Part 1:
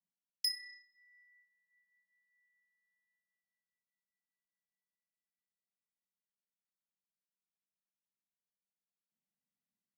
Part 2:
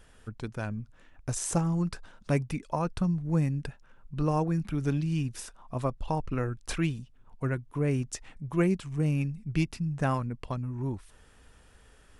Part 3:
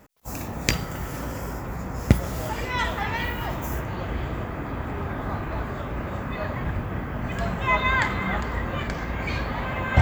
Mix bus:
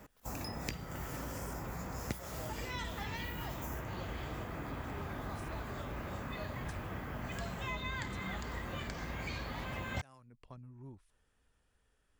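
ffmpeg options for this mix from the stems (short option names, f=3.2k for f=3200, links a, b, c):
-filter_complex "[0:a]volume=-4.5dB[a];[1:a]volume=-18dB[b];[2:a]volume=-2dB[c];[a][b][c]amix=inputs=3:normalize=0,acrossover=split=450|3500[d][e][f];[d]acompressor=threshold=-42dB:ratio=4[g];[e]acompressor=threshold=-46dB:ratio=4[h];[f]acompressor=threshold=-48dB:ratio=4[i];[g][h][i]amix=inputs=3:normalize=0"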